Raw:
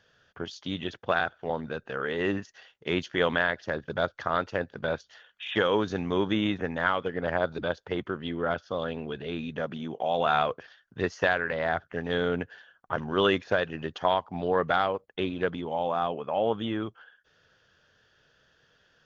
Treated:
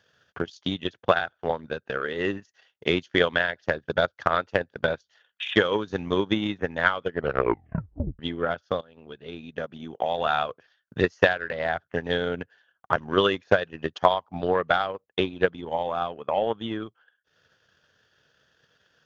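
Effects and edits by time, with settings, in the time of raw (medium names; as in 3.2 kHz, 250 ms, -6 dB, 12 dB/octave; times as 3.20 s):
7.12 s: tape stop 1.07 s
8.81–10.56 s: fade in, from -12 dB
whole clip: high-pass 63 Hz; treble shelf 5.9 kHz +4.5 dB; transient shaper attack +10 dB, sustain -10 dB; trim -1.5 dB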